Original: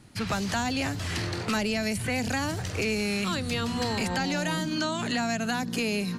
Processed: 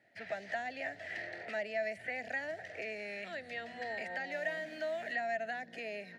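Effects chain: 4.31–5.14 requantised 6-bit, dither none; double band-pass 1100 Hz, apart 1.5 oct

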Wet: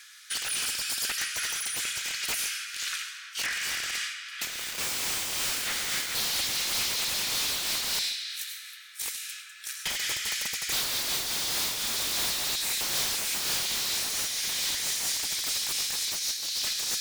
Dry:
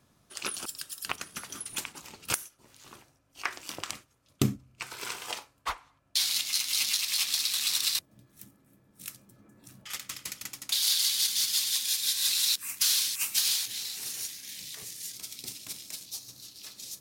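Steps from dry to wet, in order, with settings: 4.42–6.18 switching spikes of -24 dBFS; limiter -22 dBFS, peak gain reduction 11 dB; steep high-pass 1500 Hz 48 dB/oct; compressor 3:1, threshold -43 dBFS, peak gain reduction 12 dB; high shelf 8000 Hz -5.5 dB; notch 2700 Hz, Q 18; digital reverb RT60 3.5 s, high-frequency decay 0.6×, pre-delay 60 ms, DRR 3.5 dB; sine folder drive 19 dB, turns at -25.5 dBFS; bell 12000 Hz -4 dB 0.32 oct; noise-modulated level, depth 55%; gain +2.5 dB

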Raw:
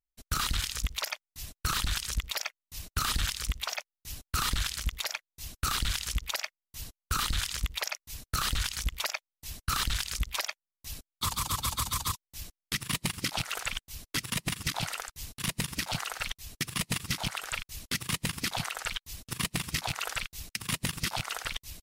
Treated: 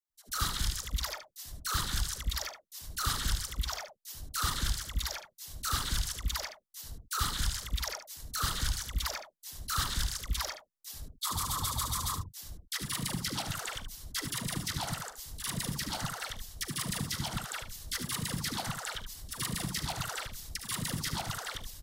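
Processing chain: bell 2500 Hz -10.5 dB 0.45 oct; dispersion lows, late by 0.102 s, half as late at 680 Hz; on a send: early reflections 42 ms -16.5 dB, 74 ms -10 dB; on the sum: gain -1.5 dB

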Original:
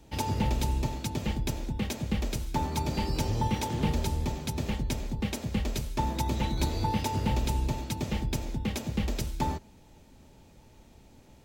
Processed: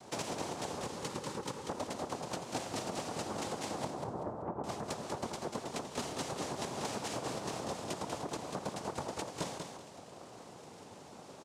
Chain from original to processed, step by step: noise vocoder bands 2; 3.85–4.64 LPF 1200 Hz 24 dB/oct; compressor 12:1, threshold -41 dBFS, peak gain reduction 21 dB; 0.82–1.68 Butterworth band-stop 680 Hz, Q 3.6; feedback echo 0.192 s, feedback 28%, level -5.5 dB; gain +5 dB

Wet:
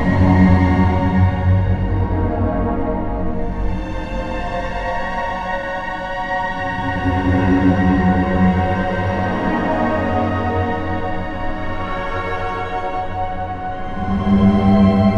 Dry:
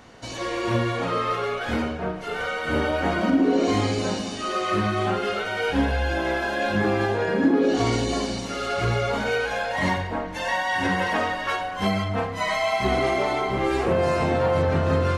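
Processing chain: tilt -4 dB/oct; Paulstretch 7.2×, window 0.25 s, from 9.81; gain +2.5 dB

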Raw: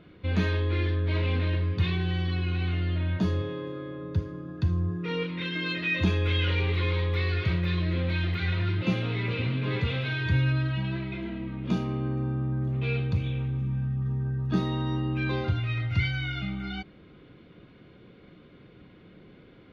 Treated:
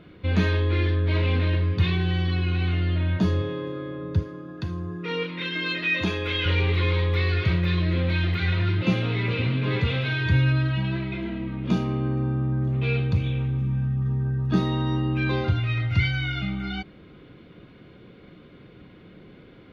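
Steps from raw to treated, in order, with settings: 4.23–6.46 HPF 290 Hz 6 dB/oct; gain +4 dB

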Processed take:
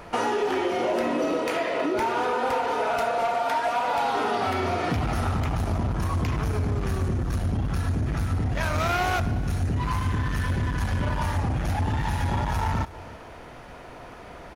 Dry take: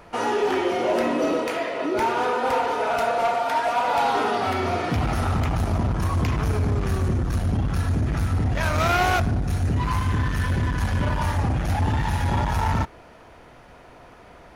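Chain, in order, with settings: compressor, threshold -27 dBFS, peak gain reduction 9 dB; on a send: echo 0.32 s -19 dB; on the sum: gain +4.5 dB

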